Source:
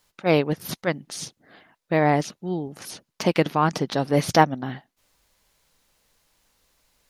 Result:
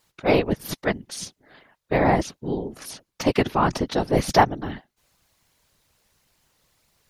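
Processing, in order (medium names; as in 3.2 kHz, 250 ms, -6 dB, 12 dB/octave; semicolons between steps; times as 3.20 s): whisper effect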